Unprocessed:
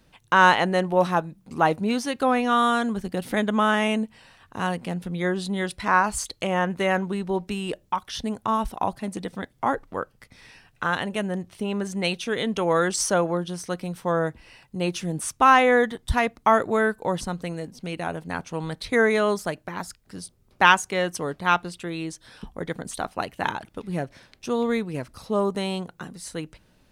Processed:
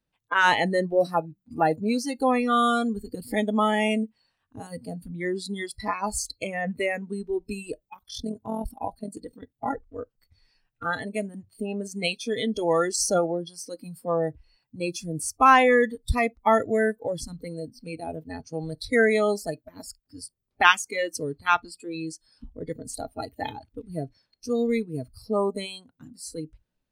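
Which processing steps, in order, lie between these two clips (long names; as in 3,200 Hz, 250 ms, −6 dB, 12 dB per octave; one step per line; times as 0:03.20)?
noise reduction from a noise print of the clip's start 23 dB
0:07.94–0:09.99: amplitude modulation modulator 43 Hz, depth 40%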